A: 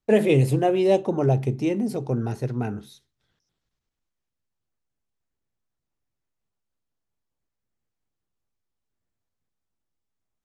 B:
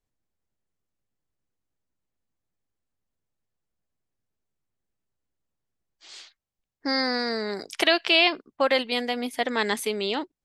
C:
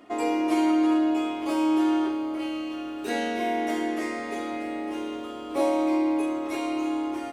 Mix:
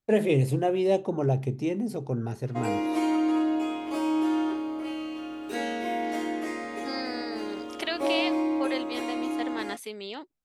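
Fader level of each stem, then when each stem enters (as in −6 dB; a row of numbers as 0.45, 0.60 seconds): −4.5, −10.5, −3.0 decibels; 0.00, 0.00, 2.45 seconds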